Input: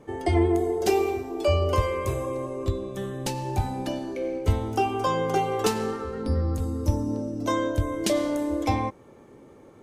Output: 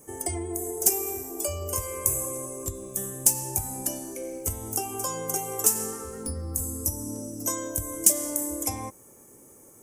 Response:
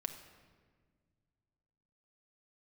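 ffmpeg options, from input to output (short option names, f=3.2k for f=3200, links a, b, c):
-af "acompressor=threshold=-24dB:ratio=4,aexciter=amount=11.7:drive=9.8:freq=6.3k,volume=-6dB"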